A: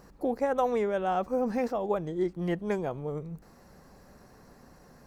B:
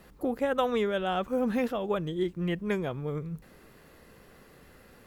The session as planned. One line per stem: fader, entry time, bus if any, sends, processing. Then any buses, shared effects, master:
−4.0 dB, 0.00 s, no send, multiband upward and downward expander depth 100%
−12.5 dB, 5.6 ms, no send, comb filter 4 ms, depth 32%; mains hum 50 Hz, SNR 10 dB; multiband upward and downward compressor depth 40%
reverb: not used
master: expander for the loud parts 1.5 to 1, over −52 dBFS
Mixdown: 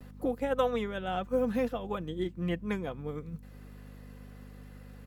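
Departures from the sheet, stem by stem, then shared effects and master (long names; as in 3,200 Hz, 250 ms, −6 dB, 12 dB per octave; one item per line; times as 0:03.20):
stem A −4.0 dB → −12.0 dB
stem B −12.5 dB → −1.5 dB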